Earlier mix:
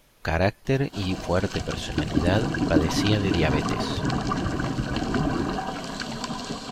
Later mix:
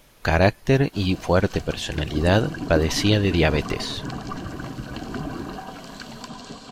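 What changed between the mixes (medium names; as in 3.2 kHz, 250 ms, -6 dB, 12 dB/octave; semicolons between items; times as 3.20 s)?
speech +5.0 dB; background -6.0 dB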